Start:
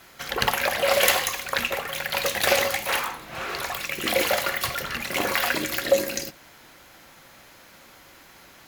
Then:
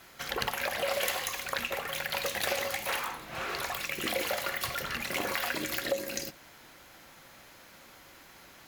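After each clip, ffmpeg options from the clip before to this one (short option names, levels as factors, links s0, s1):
-af "acompressor=threshold=0.0501:ratio=3,volume=0.668"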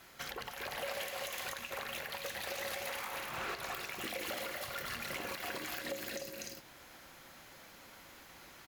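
-filter_complex "[0:a]asplit=2[s0][s1];[s1]aecho=0:1:244|299:0.501|0.501[s2];[s0][s2]amix=inputs=2:normalize=0,alimiter=level_in=1.19:limit=0.0631:level=0:latency=1:release=308,volume=0.841,volume=0.668"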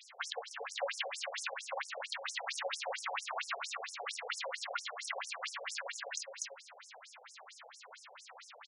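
-af "equalizer=f=550:t=o:w=0.21:g=-3.5,afftfilt=real='re*between(b*sr/1024,570*pow(7500/570,0.5+0.5*sin(2*PI*4.4*pts/sr))/1.41,570*pow(7500/570,0.5+0.5*sin(2*PI*4.4*pts/sr))*1.41)':imag='im*between(b*sr/1024,570*pow(7500/570,0.5+0.5*sin(2*PI*4.4*pts/sr))/1.41,570*pow(7500/570,0.5+0.5*sin(2*PI*4.4*pts/sr))*1.41)':win_size=1024:overlap=0.75,volume=2.82"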